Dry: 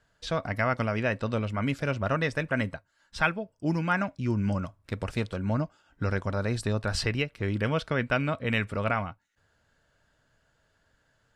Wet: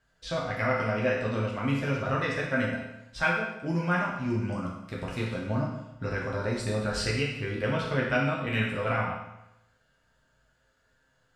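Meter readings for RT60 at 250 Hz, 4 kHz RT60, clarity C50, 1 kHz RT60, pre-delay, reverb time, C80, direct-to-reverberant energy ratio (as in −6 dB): 0.85 s, 0.85 s, 3.0 dB, 0.90 s, 8 ms, 0.90 s, 5.5 dB, −4.5 dB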